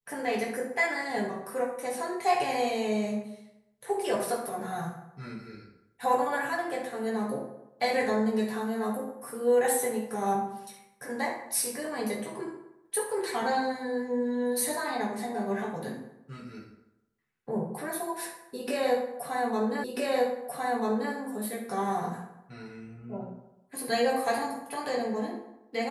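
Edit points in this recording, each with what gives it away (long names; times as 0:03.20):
0:19.84: the same again, the last 1.29 s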